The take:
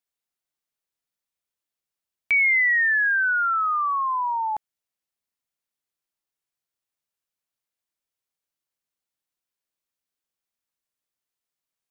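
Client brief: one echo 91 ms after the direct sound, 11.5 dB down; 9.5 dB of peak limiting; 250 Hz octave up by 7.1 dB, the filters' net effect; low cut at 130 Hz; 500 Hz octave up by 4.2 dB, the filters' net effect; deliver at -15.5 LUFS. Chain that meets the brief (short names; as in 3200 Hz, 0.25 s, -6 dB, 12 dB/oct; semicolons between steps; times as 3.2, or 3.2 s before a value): HPF 130 Hz; bell 250 Hz +8.5 dB; bell 500 Hz +3.5 dB; limiter -23.5 dBFS; echo 91 ms -11.5 dB; gain +10 dB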